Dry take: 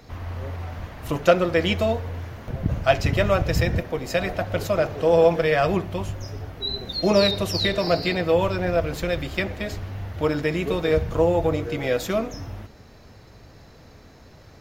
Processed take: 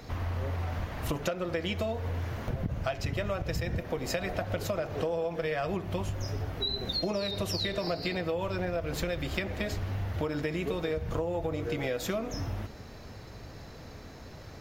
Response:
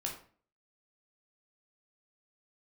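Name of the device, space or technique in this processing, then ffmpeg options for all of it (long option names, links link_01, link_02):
serial compression, leveller first: -af "acompressor=threshold=-22dB:ratio=2.5,acompressor=threshold=-31dB:ratio=5,volume=2dB"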